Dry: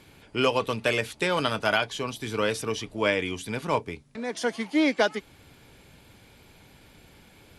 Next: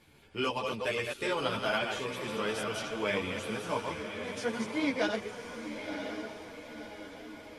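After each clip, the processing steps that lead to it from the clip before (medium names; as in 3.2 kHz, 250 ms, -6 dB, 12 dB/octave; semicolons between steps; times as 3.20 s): chunks repeated in reverse 141 ms, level -4.5 dB; echo that smears into a reverb 1033 ms, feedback 50%, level -7 dB; three-phase chorus; trim -5 dB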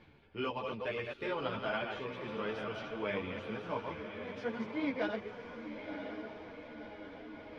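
reverse; upward compressor, threshold -38 dBFS; reverse; distance through air 280 m; trim -3.5 dB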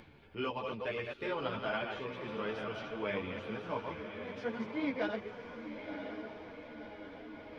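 upward compressor, threshold -52 dBFS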